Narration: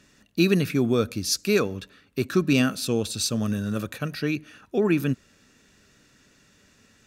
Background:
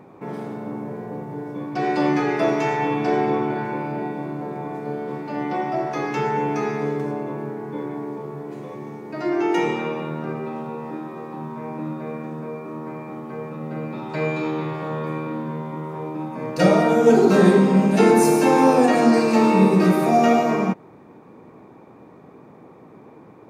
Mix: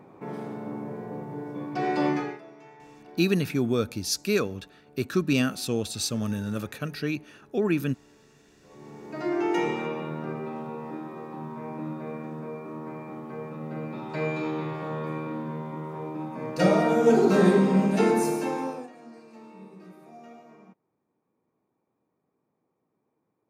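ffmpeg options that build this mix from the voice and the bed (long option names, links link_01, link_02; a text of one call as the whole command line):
ffmpeg -i stem1.wav -i stem2.wav -filter_complex "[0:a]adelay=2800,volume=-3dB[link_01];[1:a]volume=18.5dB,afade=type=out:start_time=2.07:duration=0.34:silence=0.0668344,afade=type=in:start_time=8.61:duration=0.55:silence=0.0707946,afade=type=out:start_time=17.82:duration=1.08:silence=0.0473151[link_02];[link_01][link_02]amix=inputs=2:normalize=0" out.wav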